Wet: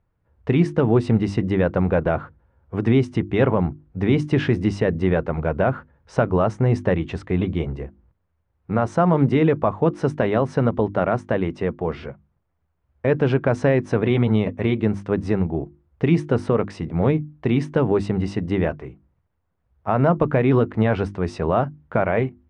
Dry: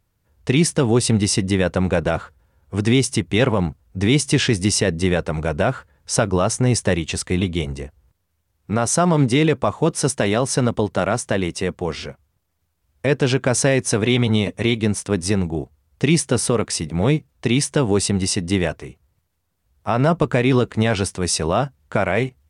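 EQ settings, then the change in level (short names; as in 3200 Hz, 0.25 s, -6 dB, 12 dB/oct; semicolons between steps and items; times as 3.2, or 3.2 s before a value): LPF 1600 Hz 12 dB/oct; notches 50/100/150/200/250/300/350 Hz; 0.0 dB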